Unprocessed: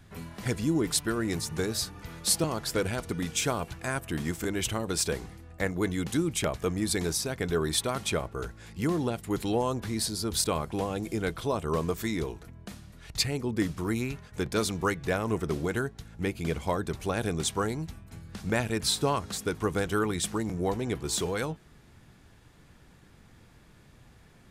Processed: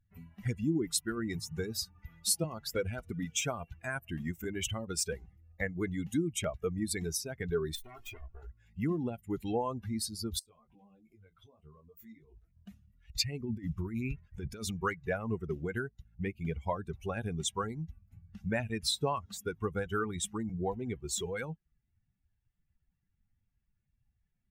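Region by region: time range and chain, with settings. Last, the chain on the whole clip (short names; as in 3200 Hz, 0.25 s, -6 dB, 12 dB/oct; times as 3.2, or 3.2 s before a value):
7.75–8.51 minimum comb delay 2.8 ms + doubler 17 ms -8 dB + compressor 3:1, threshold -37 dBFS
10.39–12.56 compressor 5:1, threshold -38 dBFS + detuned doubles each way 18 cents
13.4–14.71 low shelf 67 Hz +5.5 dB + negative-ratio compressor -31 dBFS
whole clip: per-bin expansion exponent 2; compressor 1.5:1, threshold -47 dBFS; gain +6.5 dB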